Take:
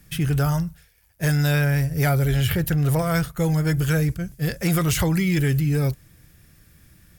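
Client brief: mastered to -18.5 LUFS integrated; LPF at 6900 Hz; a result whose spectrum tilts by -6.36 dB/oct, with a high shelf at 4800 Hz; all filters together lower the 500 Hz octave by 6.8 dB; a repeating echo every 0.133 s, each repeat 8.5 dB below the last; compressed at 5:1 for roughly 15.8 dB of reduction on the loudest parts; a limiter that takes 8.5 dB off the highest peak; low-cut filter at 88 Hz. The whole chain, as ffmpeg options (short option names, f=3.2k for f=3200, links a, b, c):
-af "highpass=88,lowpass=6.9k,equalizer=f=500:t=o:g=-8.5,highshelf=f=4.8k:g=-5,acompressor=threshold=-38dB:ratio=5,alimiter=level_in=11.5dB:limit=-24dB:level=0:latency=1,volume=-11.5dB,aecho=1:1:133|266|399|532:0.376|0.143|0.0543|0.0206,volume=23.5dB"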